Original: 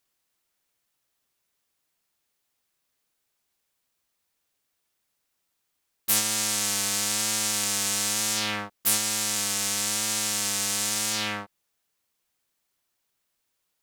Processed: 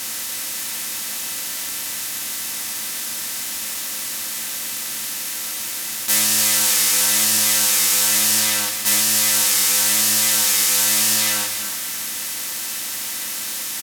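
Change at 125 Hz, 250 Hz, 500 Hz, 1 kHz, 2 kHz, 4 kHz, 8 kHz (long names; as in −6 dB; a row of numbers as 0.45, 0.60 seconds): +2.0, +4.5, +5.5, +5.5, +9.0, +9.0, +10.0 decibels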